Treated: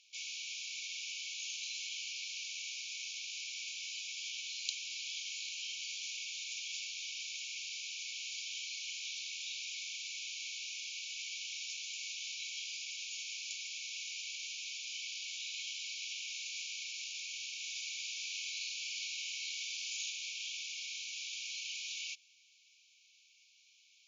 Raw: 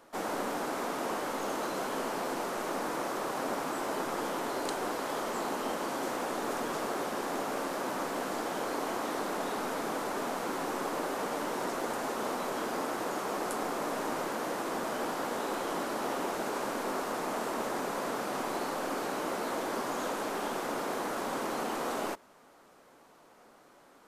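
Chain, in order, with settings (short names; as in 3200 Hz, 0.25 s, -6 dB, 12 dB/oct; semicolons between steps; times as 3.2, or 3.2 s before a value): brick-wall FIR band-pass 2200–7200 Hz; 17.61–20.1 flutter echo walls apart 8.4 m, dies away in 0.54 s; gain +5.5 dB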